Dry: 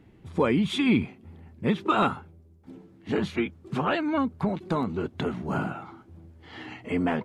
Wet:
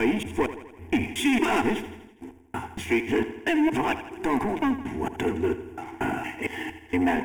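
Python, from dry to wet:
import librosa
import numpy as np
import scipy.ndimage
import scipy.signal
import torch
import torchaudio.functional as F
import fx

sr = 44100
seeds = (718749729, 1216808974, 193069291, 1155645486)

y = fx.block_reorder(x, sr, ms=231.0, group=3)
y = fx.high_shelf(y, sr, hz=3300.0, db=6.0)
y = fx.leveller(y, sr, passes=3)
y = fx.fixed_phaser(y, sr, hz=840.0, stages=8)
y = fx.echo_feedback(y, sr, ms=82, feedback_pct=57, wet_db=-12.5)
y = y * librosa.db_to_amplitude(-3.0)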